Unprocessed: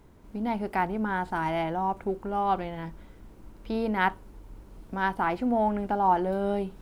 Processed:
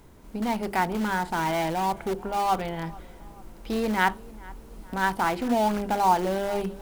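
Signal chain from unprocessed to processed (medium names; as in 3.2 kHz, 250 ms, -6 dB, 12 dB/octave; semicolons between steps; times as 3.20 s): treble shelf 3.5 kHz +6.5 dB; hum notches 50/100/150/200/250/300/350/400 Hz; in parallel at -10.5 dB: integer overflow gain 25.5 dB; on the sum: tape echo 438 ms, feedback 54%, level -21 dB, low-pass 2.4 kHz; trim +1.5 dB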